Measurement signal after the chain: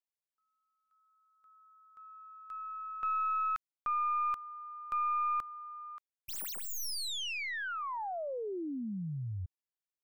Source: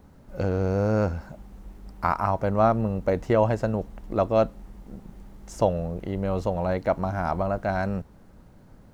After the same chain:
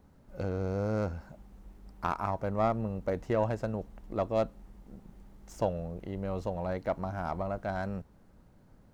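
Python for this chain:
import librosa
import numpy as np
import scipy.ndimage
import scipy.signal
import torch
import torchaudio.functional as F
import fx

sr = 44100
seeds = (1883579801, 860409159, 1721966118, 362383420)

y = fx.tracing_dist(x, sr, depth_ms=0.064)
y = y * librosa.db_to_amplitude(-8.0)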